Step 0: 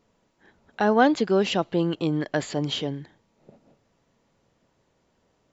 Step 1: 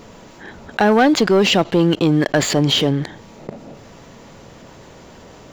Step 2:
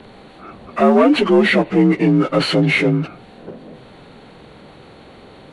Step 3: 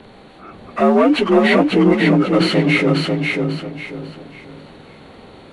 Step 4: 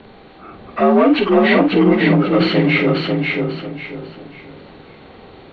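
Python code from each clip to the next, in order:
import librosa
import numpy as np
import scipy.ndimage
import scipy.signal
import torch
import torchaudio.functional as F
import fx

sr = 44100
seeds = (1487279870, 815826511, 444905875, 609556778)

y1 = fx.leveller(x, sr, passes=2)
y1 = fx.env_flatten(y1, sr, amount_pct=50)
y2 = fx.partial_stretch(y1, sr, pct=85)
y2 = y2 * librosa.db_to_amplitude(2.5)
y3 = fx.echo_feedback(y2, sr, ms=543, feedback_pct=31, wet_db=-3.5)
y3 = y3 * librosa.db_to_amplitude(-1.0)
y4 = scipy.signal.sosfilt(scipy.signal.butter(4, 4200.0, 'lowpass', fs=sr, output='sos'), y3)
y4 = fx.doubler(y4, sr, ms=49.0, db=-9)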